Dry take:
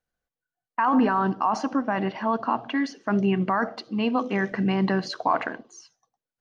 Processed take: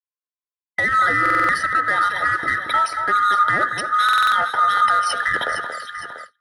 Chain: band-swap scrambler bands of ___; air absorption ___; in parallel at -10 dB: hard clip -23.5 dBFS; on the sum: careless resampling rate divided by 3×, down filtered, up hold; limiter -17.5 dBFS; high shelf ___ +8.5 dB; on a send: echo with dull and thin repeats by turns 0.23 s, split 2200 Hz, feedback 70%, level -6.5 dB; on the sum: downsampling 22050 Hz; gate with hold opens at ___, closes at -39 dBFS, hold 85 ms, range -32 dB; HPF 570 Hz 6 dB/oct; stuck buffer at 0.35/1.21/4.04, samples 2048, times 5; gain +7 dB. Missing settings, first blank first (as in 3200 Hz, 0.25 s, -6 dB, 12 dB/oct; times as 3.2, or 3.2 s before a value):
1000 Hz, 130 m, 5300 Hz, -29 dBFS